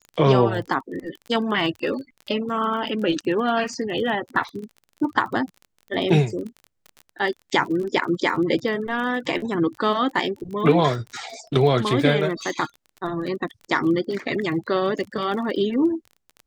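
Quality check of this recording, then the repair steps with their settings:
surface crackle 23 per second −31 dBFS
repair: click removal

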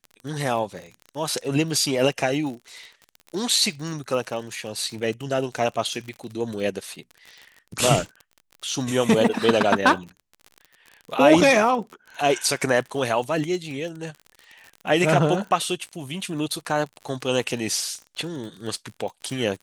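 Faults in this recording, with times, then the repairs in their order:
surface crackle 41 per second −32 dBFS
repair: click removal

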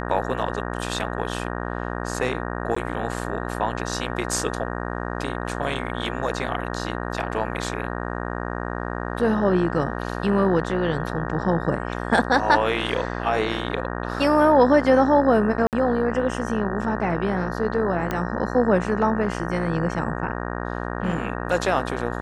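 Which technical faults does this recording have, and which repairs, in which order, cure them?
mains buzz 60 Hz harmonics 31 −29 dBFS
0:02.75–0:02.76: drop-out 14 ms
0:15.67–0:15.73: drop-out 58 ms
0:18.11: click −12 dBFS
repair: click removal
hum removal 60 Hz, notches 31
repair the gap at 0:02.75, 14 ms
repair the gap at 0:15.67, 58 ms

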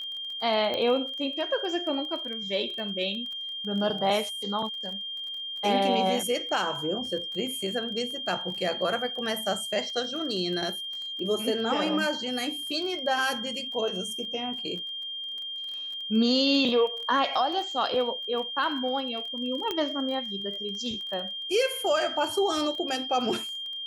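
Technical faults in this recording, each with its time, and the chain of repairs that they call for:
surface crackle 23 per second −35 dBFS
whistle 3,200 Hz −33 dBFS
0:00.74: click −18 dBFS
0:19.71: click −15 dBFS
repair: click removal
notch filter 3,200 Hz, Q 30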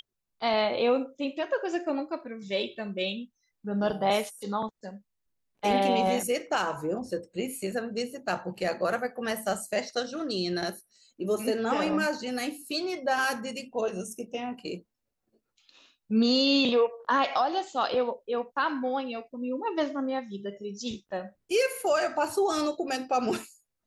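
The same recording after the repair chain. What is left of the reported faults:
0:19.71: click

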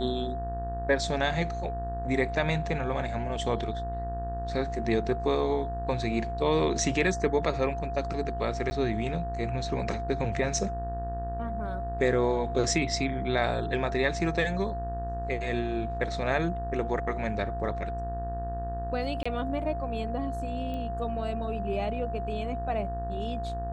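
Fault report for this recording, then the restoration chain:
mains buzz 60 Hz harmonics 31 −35 dBFS
whistle 690 Hz −34 dBFS
0:08.70–0:08.71: drop-out 10 ms
0:19.23–0:19.25: drop-out 25 ms
0:20.74: click −26 dBFS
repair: click removal
hum removal 60 Hz, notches 31
notch filter 690 Hz, Q 30
repair the gap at 0:08.70, 10 ms
repair the gap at 0:19.23, 25 ms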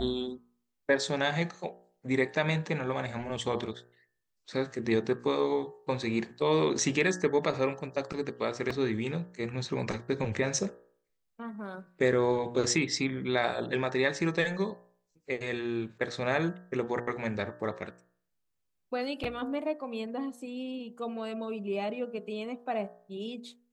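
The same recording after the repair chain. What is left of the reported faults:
none of them is left

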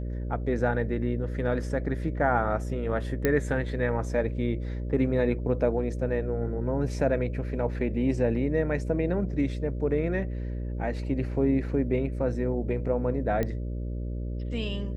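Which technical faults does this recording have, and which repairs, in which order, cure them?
mains buzz 60 Hz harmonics 10 −32 dBFS
0:03.25: click −11 dBFS
0:13.43: click −16 dBFS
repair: click removal
hum removal 60 Hz, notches 10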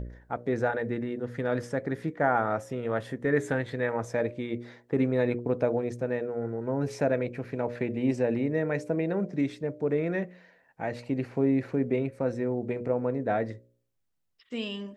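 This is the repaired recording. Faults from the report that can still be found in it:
none of them is left

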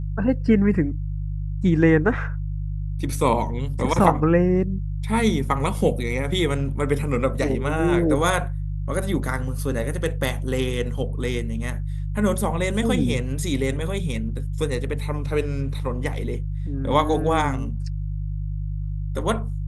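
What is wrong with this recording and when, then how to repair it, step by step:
mains hum 50 Hz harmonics 3 −27 dBFS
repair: hum removal 50 Hz, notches 3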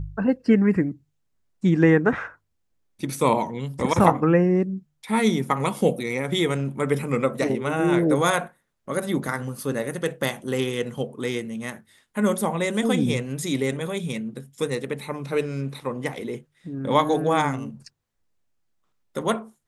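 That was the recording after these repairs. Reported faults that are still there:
none of them is left

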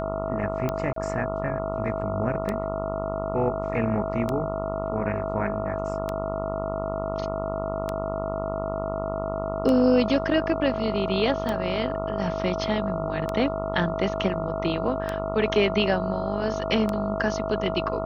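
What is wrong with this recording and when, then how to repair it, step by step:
mains buzz 50 Hz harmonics 28 −32 dBFS
scratch tick 33 1/3 rpm −14 dBFS
whistle 650 Hz −30 dBFS
0:00.93–0:00.96: drop-out 33 ms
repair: click removal
hum removal 50 Hz, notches 28
notch filter 650 Hz, Q 30
repair the gap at 0:00.93, 33 ms

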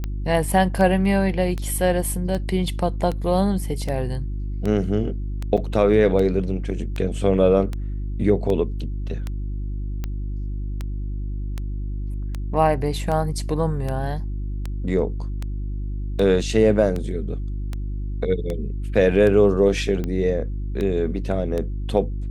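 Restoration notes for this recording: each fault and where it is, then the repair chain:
mains hum 50 Hz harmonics 7 −27 dBFS
scratch tick 78 rpm −15 dBFS
0:05.57–0:05.58: drop-out 6.4 ms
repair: click removal
hum removal 50 Hz, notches 7
repair the gap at 0:05.57, 6.4 ms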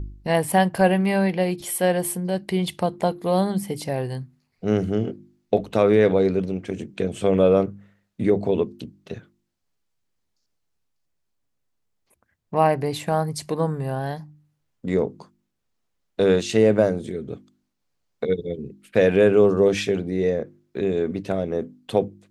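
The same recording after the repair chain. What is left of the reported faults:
none of them is left

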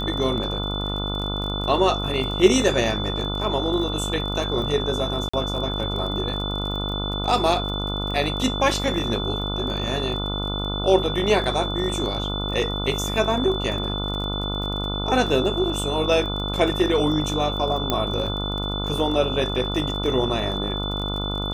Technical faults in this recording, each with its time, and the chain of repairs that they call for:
mains buzz 50 Hz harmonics 29 −28 dBFS
surface crackle 25 per second −30 dBFS
whistle 3,500 Hz −29 dBFS
0:05.29–0:05.33: drop-out 45 ms
0:17.90: click −7 dBFS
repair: click removal
notch filter 3,500 Hz, Q 30
hum removal 50 Hz, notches 29
repair the gap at 0:05.29, 45 ms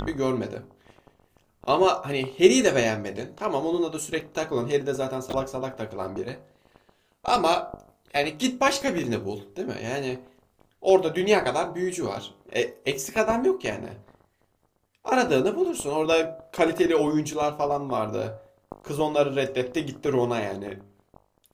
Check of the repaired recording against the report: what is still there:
none of them is left

